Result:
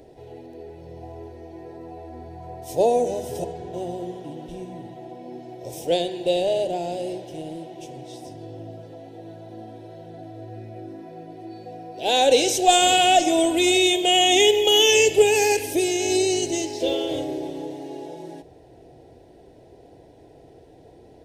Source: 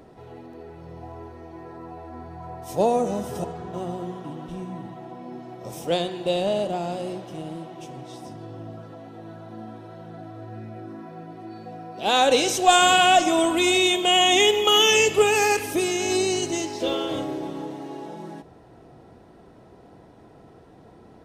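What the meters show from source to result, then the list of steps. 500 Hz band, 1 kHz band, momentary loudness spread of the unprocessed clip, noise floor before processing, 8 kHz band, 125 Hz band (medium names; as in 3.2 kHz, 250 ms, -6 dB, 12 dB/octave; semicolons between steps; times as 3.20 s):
+2.5 dB, -1.0 dB, 23 LU, -50 dBFS, +2.0 dB, -2.0 dB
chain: peaking EQ 210 Hz +12 dB 0.54 oct; static phaser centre 500 Hz, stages 4; trim +2.5 dB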